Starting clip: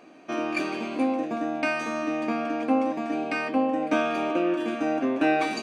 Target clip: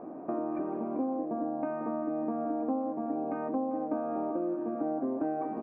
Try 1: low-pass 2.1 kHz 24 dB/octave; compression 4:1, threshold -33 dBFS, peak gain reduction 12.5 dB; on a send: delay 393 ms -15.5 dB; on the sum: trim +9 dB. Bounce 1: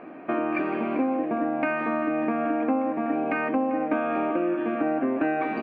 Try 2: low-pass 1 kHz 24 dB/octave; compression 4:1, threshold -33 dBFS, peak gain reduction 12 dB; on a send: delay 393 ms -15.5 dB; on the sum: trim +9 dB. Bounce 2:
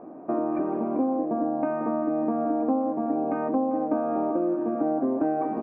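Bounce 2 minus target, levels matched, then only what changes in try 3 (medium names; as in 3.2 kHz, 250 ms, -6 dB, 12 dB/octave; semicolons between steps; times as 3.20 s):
compression: peak gain reduction -7 dB
change: compression 4:1, threshold -42 dBFS, peak gain reduction 19 dB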